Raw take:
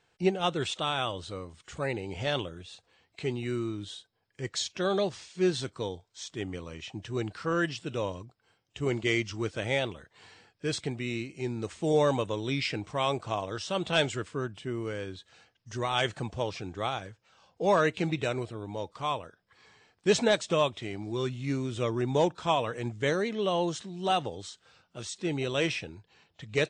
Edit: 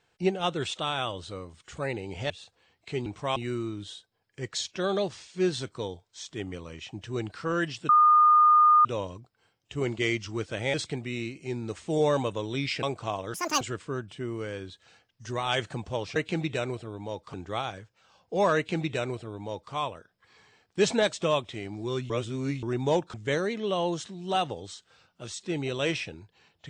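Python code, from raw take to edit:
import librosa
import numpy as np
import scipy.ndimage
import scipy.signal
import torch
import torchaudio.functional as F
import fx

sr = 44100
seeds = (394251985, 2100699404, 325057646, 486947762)

y = fx.edit(x, sr, fx.cut(start_s=2.3, length_s=0.31),
    fx.insert_tone(at_s=7.9, length_s=0.96, hz=1220.0, db=-15.0),
    fx.cut(start_s=9.79, length_s=0.89),
    fx.move(start_s=12.77, length_s=0.3, to_s=3.37),
    fx.speed_span(start_s=13.58, length_s=0.49, speed=1.83),
    fx.duplicate(start_s=17.84, length_s=1.18, to_s=16.62),
    fx.reverse_span(start_s=21.38, length_s=0.53),
    fx.cut(start_s=22.42, length_s=0.47), tone=tone)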